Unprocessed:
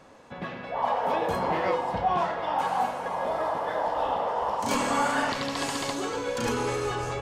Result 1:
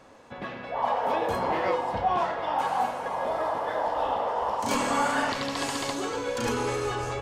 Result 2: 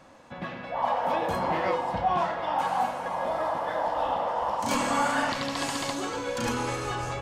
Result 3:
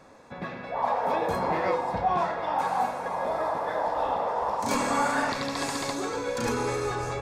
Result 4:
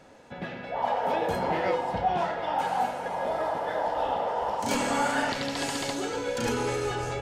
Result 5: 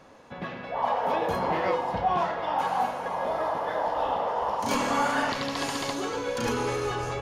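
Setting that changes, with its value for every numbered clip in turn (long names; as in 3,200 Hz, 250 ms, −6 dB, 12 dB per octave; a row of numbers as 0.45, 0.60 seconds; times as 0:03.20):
notch filter, centre frequency: 170, 430, 3,000, 1,100, 8,000 Hertz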